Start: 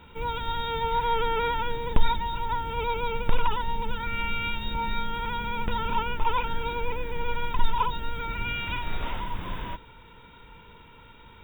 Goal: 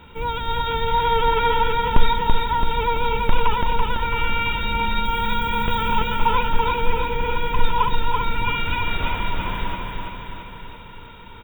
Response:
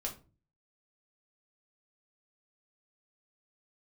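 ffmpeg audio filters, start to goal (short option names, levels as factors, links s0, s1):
-filter_complex "[0:a]asettb=1/sr,asplit=3[s0][s1][s2];[s0]atrim=end=5.054[s3];[s1]atrim=start=5.05:end=5.99,asetpts=PTS-STARTPTS,afade=t=in:d=0.004:c=qsin,afade=t=out:st=0.936:d=0.004:c=qsin,highshelf=f=7000:g=10[s4];[s2]atrim=start=5.986[s5];[s3][s4]acrossfade=d=0.004:c1=hsin:c2=qsin[s6];[s6][s5]acrossfade=d=0.004:c1=qsin:c2=hsin,aecho=1:1:334|668|1002|1336|1670|2004|2338|2672:0.668|0.394|0.233|0.137|0.081|0.0478|0.0282|0.0166,volume=1.78"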